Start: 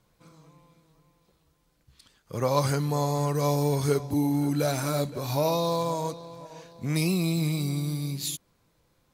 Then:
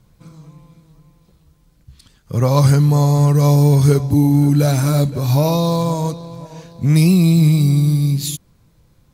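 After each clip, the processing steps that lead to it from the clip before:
bass and treble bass +12 dB, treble +2 dB
level +5.5 dB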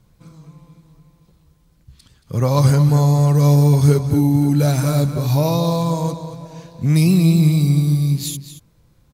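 slap from a distant wall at 39 metres, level −10 dB
level −2 dB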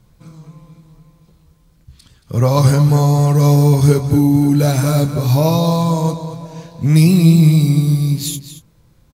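double-tracking delay 25 ms −11.5 dB
level +3 dB

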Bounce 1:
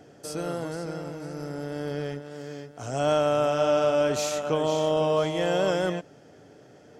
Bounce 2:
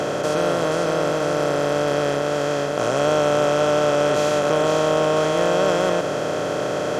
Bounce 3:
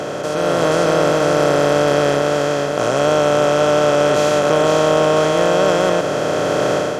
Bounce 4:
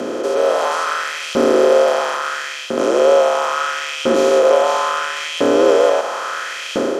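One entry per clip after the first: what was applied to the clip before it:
compressor on every frequency bin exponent 0.2; bass and treble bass −1 dB, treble −6 dB
automatic gain control; level −1 dB
frequency shifter −58 Hz; auto-filter high-pass saw up 0.74 Hz 230–2,900 Hz; level −2 dB

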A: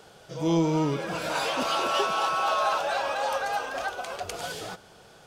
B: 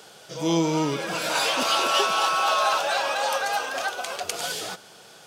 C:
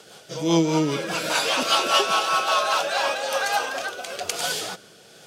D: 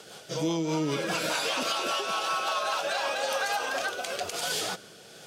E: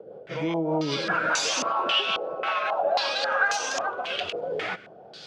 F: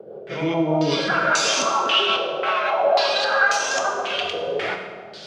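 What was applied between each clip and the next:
high-pass filter 150 Hz 12 dB per octave; high-shelf EQ 2,000 Hz +8.5 dB; level +1 dB
rotating-speaker cabinet horn 5 Hz, later 1 Hz, at 0:02.57; level +4 dB
downward compressor 6 to 1, threshold −24 dBFS, peak gain reduction 9.5 dB; brickwall limiter −19.5 dBFS, peak gain reduction 9 dB
low-pass on a step sequencer 3.7 Hz 510–6,300 Hz
convolution reverb RT60 1.4 s, pre-delay 3 ms, DRR 2 dB; level +3.5 dB

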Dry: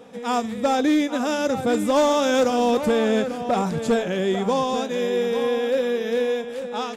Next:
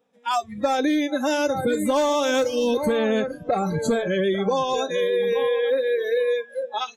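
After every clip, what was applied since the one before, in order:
noise reduction from a noise print of the clip's start 28 dB
low-shelf EQ 430 Hz −3.5 dB
downward compressor, threshold −24 dBFS, peak gain reduction 7 dB
level +5.5 dB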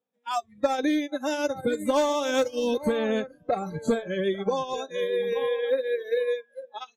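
expander for the loud parts 2.5 to 1, over −30 dBFS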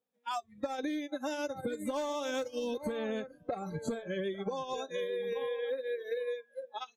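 downward compressor, threshold −30 dBFS, peak gain reduction 12 dB
level −2.5 dB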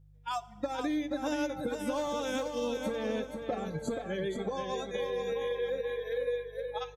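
hum with harmonics 50 Hz, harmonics 3, −59 dBFS −3 dB per octave
repeating echo 478 ms, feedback 27%, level −6.5 dB
feedback delay network reverb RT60 1.3 s, high-frequency decay 0.8×, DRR 16.5 dB
level +1 dB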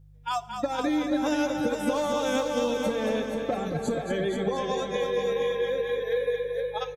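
repeating echo 227 ms, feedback 47%, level −7 dB
level +5.5 dB

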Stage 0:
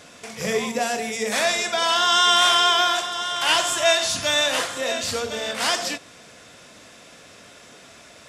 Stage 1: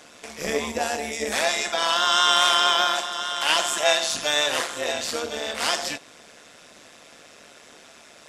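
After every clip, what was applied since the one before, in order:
high-pass filter 200 Hz 12 dB per octave
amplitude modulation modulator 150 Hz, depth 60%
level +1.5 dB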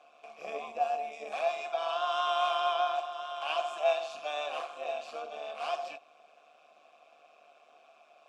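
formant filter a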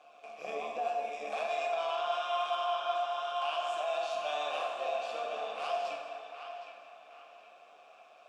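brickwall limiter −27 dBFS, peak gain reduction 10.5 dB
feedback echo with a band-pass in the loop 764 ms, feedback 40%, band-pass 1,700 Hz, level −7 dB
dense smooth reverb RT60 2 s, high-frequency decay 0.75×, DRR 2 dB

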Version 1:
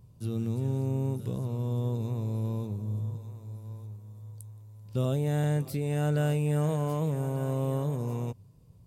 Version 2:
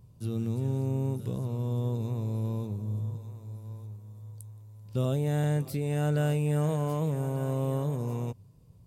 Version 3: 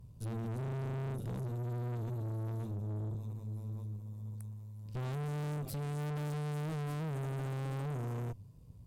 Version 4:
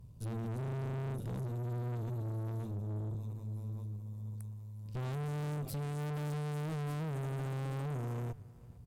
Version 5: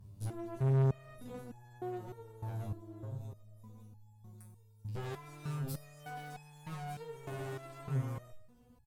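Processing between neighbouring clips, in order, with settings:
no processing that can be heard
low-shelf EQ 85 Hz +9.5 dB; tube saturation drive 37 dB, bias 0.65; level +1 dB
repeating echo 454 ms, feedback 30%, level −22 dB
single-tap delay 95 ms −16.5 dB; step-sequenced resonator 3.3 Hz 98–850 Hz; level +11 dB

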